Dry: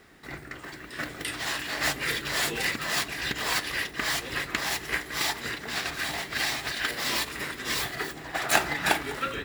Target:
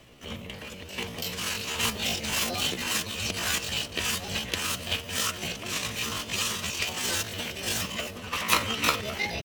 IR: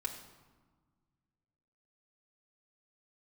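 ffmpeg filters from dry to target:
-filter_complex "[0:a]acrossover=split=150|2300[a][b][c];[a]aeval=exprs='0.0251*sin(PI/2*1.78*val(0)/0.0251)':c=same[d];[d][b][c]amix=inputs=3:normalize=0,asetrate=68011,aresample=44100,atempo=0.64842"

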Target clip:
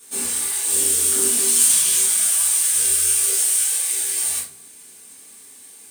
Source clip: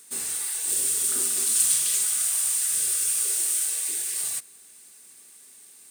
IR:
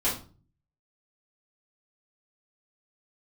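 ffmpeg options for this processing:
-filter_complex "[0:a]asettb=1/sr,asplit=3[a][b][c];[a]atrim=end=3.384[d];[b]atrim=start=3.38:end=4,asetpts=PTS-STARTPTS,afade=t=in:d=0.004:c=qsin,afade=t=out:st=0.616:d=0.004:c=qsin,highpass=520[e];[c]atrim=start=3.996[f];[d][e]acrossfade=d=0.004:c1=hsin:c2=qsin[g];[g][f]acrossfade=d=0.004:c1=qsin:c2=hsin[h];[1:a]atrim=start_sample=2205,afade=t=out:st=0.32:d=0.01,atrim=end_sample=14553[i];[h][i]afir=irnorm=-1:irlink=0,volume=-2dB"

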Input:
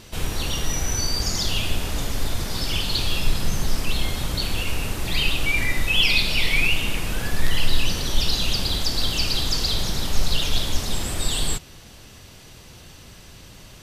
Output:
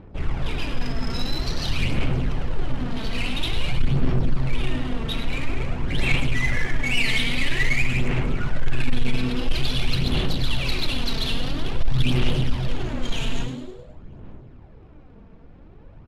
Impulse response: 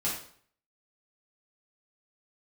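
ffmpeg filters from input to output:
-filter_complex "[0:a]asetrate=37926,aresample=44100,asplit=2[a][b];[b]aecho=0:1:953:0.0794[c];[a][c]amix=inputs=2:normalize=0,adynamicsmooth=sensitivity=5:basefreq=680,lowpass=f=12k:w=0.5412,lowpass=f=12k:w=1.3066,highshelf=f=5k:g=-9,asplit=2[d][e];[e]asplit=5[f][g][h][i][j];[f]adelay=105,afreqshift=120,volume=-9.5dB[k];[g]adelay=210,afreqshift=240,volume=-16.1dB[l];[h]adelay=315,afreqshift=360,volume=-22.6dB[m];[i]adelay=420,afreqshift=480,volume=-29.2dB[n];[j]adelay=525,afreqshift=600,volume=-35.7dB[o];[k][l][m][n][o]amix=inputs=5:normalize=0[p];[d][p]amix=inputs=2:normalize=0,asoftclip=type=tanh:threshold=-13dB,aphaser=in_gain=1:out_gain=1:delay=4.5:decay=0.43:speed=0.49:type=sinusoidal,volume=-1.5dB"

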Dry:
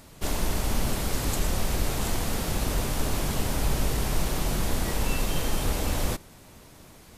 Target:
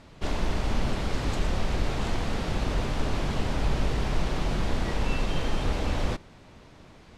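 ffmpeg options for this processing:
-af "lowpass=4k"

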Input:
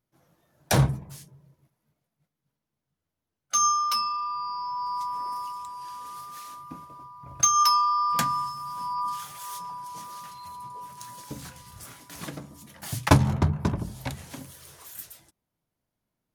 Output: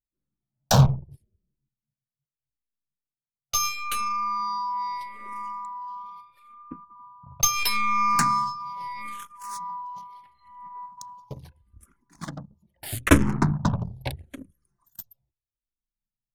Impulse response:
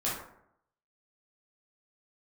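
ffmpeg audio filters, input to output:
-filter_complex "[0:a]aeval=exprs='0.596*(cos(1*acos(clip(val(0)/0.596,-1,1)))-cos(1*PI/2))+0.0119*(cos(7*acos(clip(val(0)/0.596,-1,1)))-cos(7*PI/2))+0.0422*(cos(8*acos(clip(val(0)/0.596,-1,1)))-cos(8*PI/2))':c=same,anlmdn=0.631,asplit=2[a][b];[b]afreqshift=-0.77[c];[a][c]amix=inputs=2:normalize=1,volume=5.5dB"

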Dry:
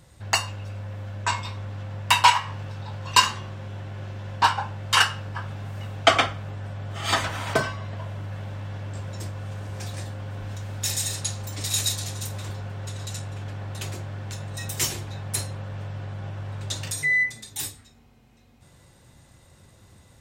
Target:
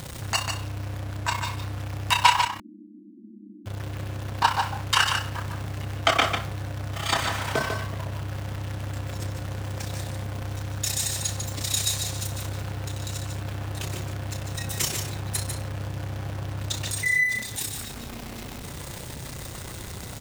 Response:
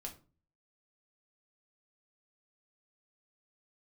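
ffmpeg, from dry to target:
-filter_complex "[0:a]aeval=exprs='val(0)+0.5*0.0335*sgn(val(0))':c=same,tremolo=f=31:d=0.71,asettb=1/sr,asplit=3[a][b][c];[a]atrim=end=2.454[d];[b]atrim=start=2.45:end=3.66,asetpts=PTS-STARTPTS,afade=t=in:d=0.004:c=qsin,afade=t=out:st=1.206:d=0.004:c=qsin,asuperpass=centerf=260:order=20:qfactor=1.7[e];[c]atrim=start=3.656[f];[d][e]acrossfade=d=0.004:c1=hsin:c2=qsin[g];[g][f]acrossfade=d=0.004:c1=qsin:c2=hsin,asplit=2[h][i];[i]aecho=0:1:147:0.501[j];[h][j]amix=inputs=2:normalize=0"

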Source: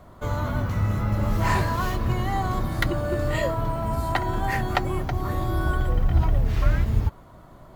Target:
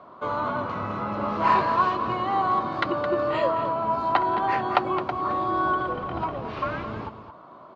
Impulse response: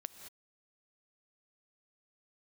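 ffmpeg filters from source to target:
-af "highpass=290,equalizer=f=1.1k:t=q:w=4:g=8,equalizer=f=1.9k:t=q:w=4:g=-8,equalizer=f=3.4k:t=q:w=4:g=-4,lowpass=f=3.9k:w=0.5412,lowpass=f=3.9k:w=1.3066,aecho=1:1:216:0.282,volume=2.5dB"

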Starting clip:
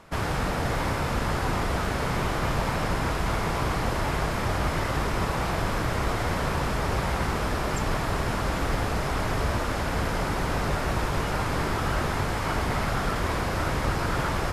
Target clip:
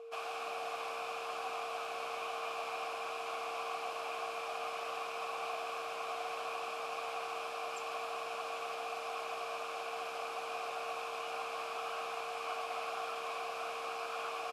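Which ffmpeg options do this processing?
-filter_complex "[0:a]aderivative,aeval=exprs='val(0)+0.00501*sin(2*PI*460*n/s)':c=same,asplit=3[a][b][c];[a]bandpass=f=730:t=q:w=8,volume=0dB[d];[b]bandpass=f=1.09k:t=q:w=8,volume=-6dB[e];[c]bandpass=f=2.44k:t=q:w=8,volume=-9dB[f];[d][e][f]amix=inputs=3:normalize=0,asplit=7[g][h][i][j][k][l][m];[h]adelay=117,afreqshift=-69,volume=-19dB[n];[i]adelay=234,afreqshift=-138,volume=-22.9dB[o];[j]adelay=351,afreqshift=-207,volume=-26.8dB[p];[k]adelay=468,afreqshift=-276,volume=-30.6dB[q];[l]adelay=585,afreqshift=-345,volume=-34.5dB[r];[m]adelay=702,afreqshift=-414,volume=-38.4dB[s];[g][n][o][p][q][r][s]amix=inputs=7:normalize=0,volume=15.5dB"

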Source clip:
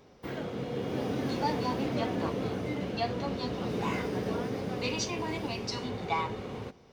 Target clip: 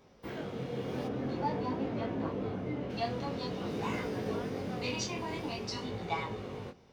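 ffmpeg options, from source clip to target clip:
-filter_complex "[0:a]flanger=delay=18:depth=6.5:speed=0.49,asplit=3[a][b][c];[a]afade=t=out:st=1.07:d=0.02[d];[b]lowpass=f=1.6k:p=1,afade=t=in:st=1.07:d=0.02,afade=t=out:st=2.89:d=0.02[e];[c]afade=t=in:st=2.89:d=0.02[f];[d][e][f]amix=inputs=3:normalize=0"

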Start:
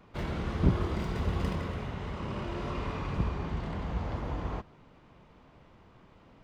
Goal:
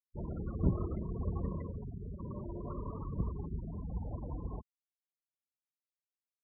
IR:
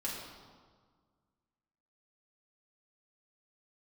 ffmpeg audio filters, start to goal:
-filter_complex "[0:a]afftfilt=real='re*gte(hypot(re,im),0.0398)':imag='im*gte(hypot(re,im),0.0398)':win_size=1024:overlap=0.75,asplit=2[a][b];[b]asetrate=22050,aresample=44100,atempo=2,volume=-17dB[c];[a][c]amix=inputs=2:normalize=0,volume=-5dB"

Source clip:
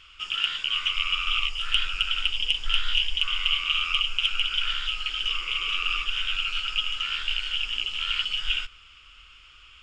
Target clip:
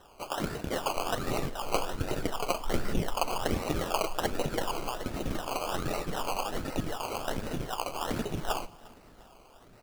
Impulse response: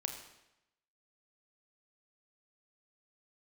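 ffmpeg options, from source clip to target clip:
-filter_complex "[0:a]acrusher=samples=19:mix=1:aa=0.000001:lfo=1:lforange=11.4:lforate=1.3,aecho=1:1:352|704|1056|1408:0.0668|0.0381|0.0217|0.0124,asplit=2[a][b];[1:a]atrim=start_sample=2205[c];[b][c]afir=irnorm=-1:irlink=0,volume=-14dB[d];[a][d]amix=inputs=2:normalize=0,volume=-6.5dB"

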